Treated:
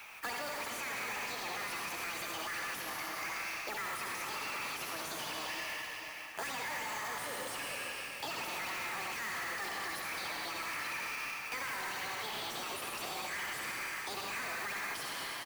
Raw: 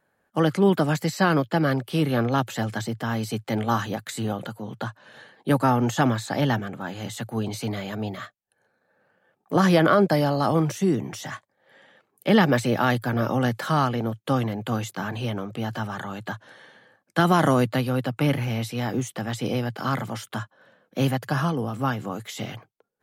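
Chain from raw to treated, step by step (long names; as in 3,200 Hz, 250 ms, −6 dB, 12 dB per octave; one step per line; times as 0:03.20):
first difference
on a send at −1.5 dB: convolution reverb RT60 2.2 s, pre-delay 78 ms
on the sum: mid-hump overdrive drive 34 dB, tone 1,400 Hz, clips at −19 dBFS
high-pass filter 59 Hz 24 dB per octave
single-tap delay 669 ms −13.5 dB
change of speed 1.49×
noise that follows the level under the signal 11 dB
in parallel at −8 dB: sample-rate reduction 8,200 Hz
on the sum: brickwall limiter −25 dBFS, peak gain reduction 7.5 dB
multiband upward and downward compressor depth 70%
level −6.5 dB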